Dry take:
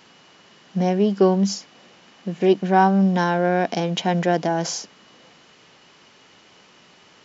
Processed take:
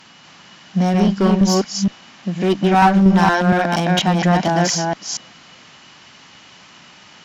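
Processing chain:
delay that plays each chunk backwards 235 ms, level −2.5 dB
parametric band 440 Hz −10 dB 0.86 octaves
asymmetric clip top −18 dBFS
level +6.5 dB

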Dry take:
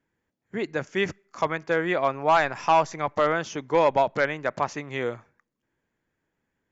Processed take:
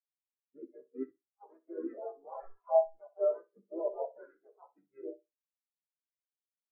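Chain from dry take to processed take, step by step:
parametric band 180 Hz −13.5 dB 0.77 octaves
pitch-shifted copies added −7 semitones −2 dB, −4 semitones −3 dB, +4 semitones −5 dB
leveller curve on the samples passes 2
brickwall limiter −13 dBFS, peak gain reduction 10.5 dB
double-tracking delay 15 ms −6.5 dB
flutter between parallel walls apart 10.6 metres, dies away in 0.78 s
every bin expanded away from the loudest bin 4 to 1
level −9 dB

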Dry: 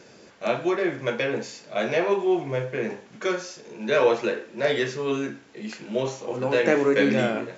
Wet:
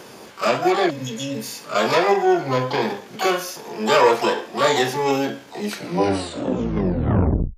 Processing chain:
turntable brake at the end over 1.98 s
in parallel at −1 dB: downward compressor 4 to 1, threshold −30 dBFS, peak gain reduction 13 dB
on the sum: healed spectral selection 0:00.92–0:01.53, 310–2,600 Hz after
pitch-shifted copies added +12 semitones −3 dB
saturating transformer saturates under 310 Hz
level +1.5 dB

